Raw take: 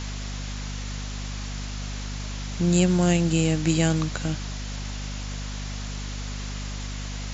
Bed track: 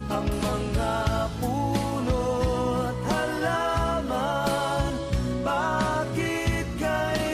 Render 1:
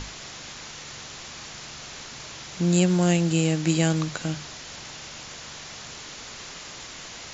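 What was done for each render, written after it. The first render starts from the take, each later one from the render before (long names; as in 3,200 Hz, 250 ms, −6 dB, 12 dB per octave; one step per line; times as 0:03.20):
mains-hum notches 50/100/150/200/250 Hz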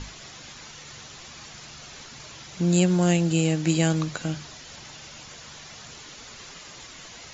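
broadband denoise 7 dB, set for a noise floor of −41 dBFS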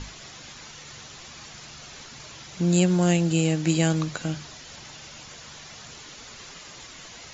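no processing that can be heard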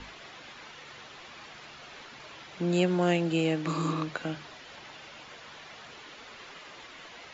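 0:03.69–0:03.99: healed spectral selection 230–4,100 Hz after
three-way crossover with the lows and the highs turned down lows −12 dB, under 260 Hz, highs −20 dB, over 3,800 Hz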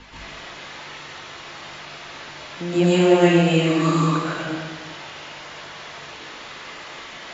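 dense smooth reverb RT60 1.4 s, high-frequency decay 0.9×, pre-delay 105 ms, DRR −9.5 dB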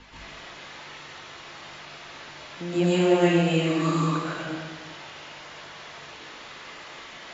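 level −5 dB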